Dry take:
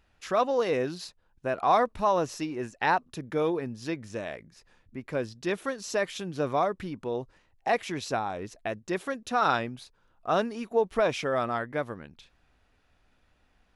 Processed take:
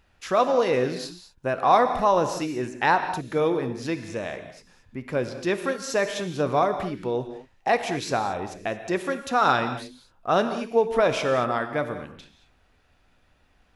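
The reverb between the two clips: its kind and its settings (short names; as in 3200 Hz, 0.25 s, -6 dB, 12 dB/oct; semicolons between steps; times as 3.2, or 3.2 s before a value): non-linear reverb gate 0.25 s flat, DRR 8 dB; gain +4 dB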